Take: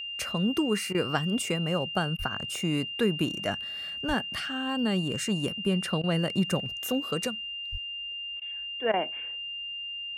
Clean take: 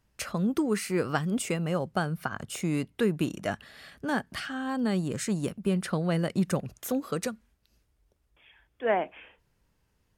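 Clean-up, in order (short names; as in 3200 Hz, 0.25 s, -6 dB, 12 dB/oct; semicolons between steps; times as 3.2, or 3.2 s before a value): notch 2800 Hz, Q 30; de-plosive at 2.18/4.07/7.71; interpolate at 0.93/2.17/6.02/8.4/8.92, 15 ms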